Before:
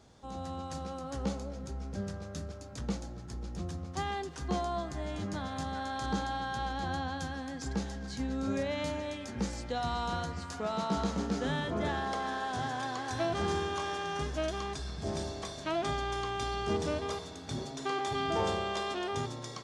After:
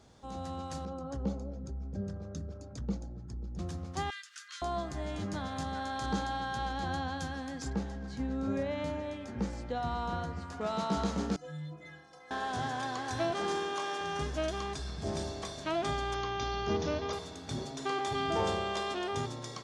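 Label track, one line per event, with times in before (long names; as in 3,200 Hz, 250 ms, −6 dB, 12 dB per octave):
0.850000	3.590000	spectral envelope exaggerated exponent 1.5
4.100000	4.620000	Butterworth high-pass 1,300 Hz 72 dB per octave
7.700000	10.610000	high-shelf EQ 2,700 Hz −11 dB
11.360000	12.310000	stiff-string resonator 150 Hz, decay 0.7 s, inharmonicity 0.03
13.310000	14.010000	high-pass filter 260 Hz
16.140000	17.130000	Butterworth low-pass 6,600 Hz 96 dB per octave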